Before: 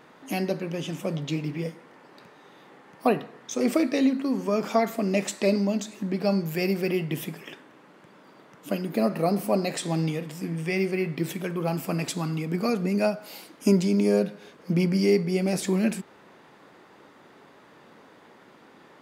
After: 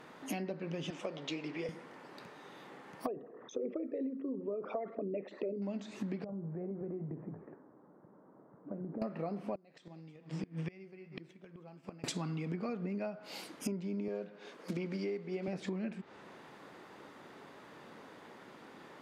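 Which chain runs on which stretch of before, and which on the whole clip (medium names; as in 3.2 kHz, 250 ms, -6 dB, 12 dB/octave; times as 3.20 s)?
0.90–1.69 s: high-pass 390 Hz + distance through air 80 m
3.07–5.62 s: resonances exaggerated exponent 2 + distance through air 300 m
6.24–9.02 s: flange 2 Hz, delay 1.3 ms, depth 7.3 ms, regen -84% + Gaussian low-pass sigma 8 samples + compression 3:1, threshold -37 dBFS
9.55–12.04 s: delay 316 ms -15 dB + inverted gate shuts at -21 dBFS, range -25 dB + distance through air 130 m
14.08–15.48 s: block-companded coder 5-bit + high-pass 260 Hz + treble shelf 10 kHz -7.5 dB
whole clip: low-pass that closes with the level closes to 2.6 kHz, closed at -23 dBFS; compression 10:1, threshold -34 dBFS; trim -1 dB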